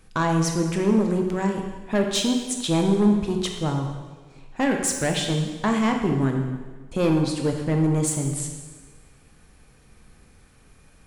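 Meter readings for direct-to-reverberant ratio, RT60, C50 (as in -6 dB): 2.5 dB, 1.4 s, 5.0 dB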